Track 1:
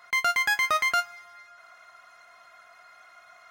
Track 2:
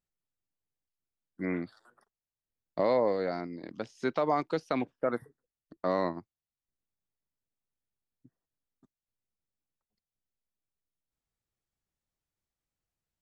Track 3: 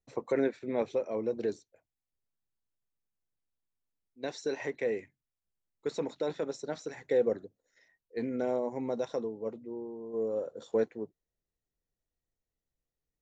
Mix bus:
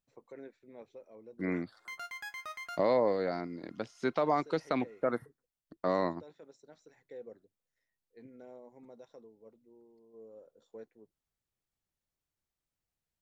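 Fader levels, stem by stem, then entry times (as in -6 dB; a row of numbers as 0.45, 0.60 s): -19.0, -1.0, -20.0 dB; 1.75, 0.00, 0.00 s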